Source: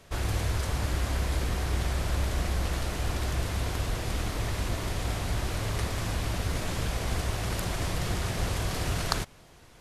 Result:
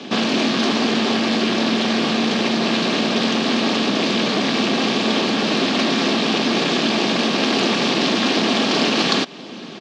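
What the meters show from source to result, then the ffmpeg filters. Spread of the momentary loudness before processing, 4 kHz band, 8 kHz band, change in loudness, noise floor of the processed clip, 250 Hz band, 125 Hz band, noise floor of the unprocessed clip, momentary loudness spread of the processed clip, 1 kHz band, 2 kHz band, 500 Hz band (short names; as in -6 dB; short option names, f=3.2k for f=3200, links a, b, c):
2 LU, +18.5 dB, +6.5 dB, +13.0 dB, -34 dBFS, +20.0 dB, -2.0 dB, -53 dBFS, 1 LU, +13.5 dB, +14.5 dB, +15.5 dB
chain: -filter_complex "[0:a]aecho=1:1:4:0.34,asplit=2[a][b];[b]acompressor=threshold=-36dB:ratio=6,volume=0dB[c];[a][c]amix=inputs=2:normalize=0,apsyclip=22dB,acrossover=split=300|3000[d][e][f];[d]acompressor=threshold=-20dB:ratio=2[g];[g][e][f]amix=inputs=3:normalize=0,aeval=exprs='val(0)*sin(2*PI*160*n/s)':c=same,highpass=f=220:w=0.5412,highpass=f=220:w=1.3066,equalizer=f=250:t=q:w=4:g=4,equalizer=f=570:t=q:w=4:g=-6,equalizer=f=910:t=q:w=4:g=-9,equalizer=f=1.4k:t=q:w=4:g=-9,equalizer=f=2k:t=q:w=4:g=-8,lowpass=f=4.7k:w=0.5412,lowpass=f=4.7k:w=1.3066,volume=-1dB"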